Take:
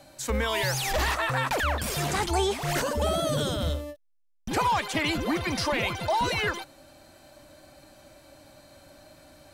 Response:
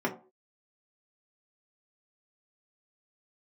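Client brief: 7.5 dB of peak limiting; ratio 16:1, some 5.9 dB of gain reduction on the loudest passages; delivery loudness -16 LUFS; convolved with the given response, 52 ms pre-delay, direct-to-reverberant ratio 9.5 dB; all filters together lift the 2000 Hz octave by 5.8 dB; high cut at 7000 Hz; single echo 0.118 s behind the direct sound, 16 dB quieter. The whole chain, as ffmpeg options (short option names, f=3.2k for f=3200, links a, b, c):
-filter_complex "[0:a]lowpass=7k,equalizer=f=2k:t=o:g=7,acompressor=threshold=-25dB:ratio=16,alimiter=limit=-23.5dB:level=0:latency=1,aecho=1:1:118:0.158,asplit=2[a][b];[1:a]atrim=start_sample=2205,adelay=52[c];[b][c]afir=irnorm=-1:irlink=0,volume=-19dB[d];[a][d]amix=inputs=2:normalize=0,volume=15dB"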